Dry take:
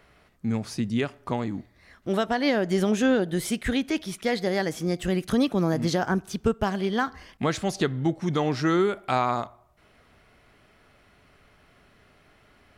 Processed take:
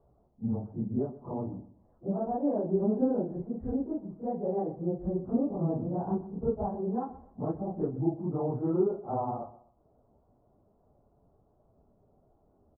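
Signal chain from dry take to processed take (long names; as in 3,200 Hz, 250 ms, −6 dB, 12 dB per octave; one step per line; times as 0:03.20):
random phases in long frames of 100 ms
Butterworth low-pass 890 Hz 36 dB per octave
repeating echo 125 ms, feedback 28%, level −16 dB
level −5.5 dB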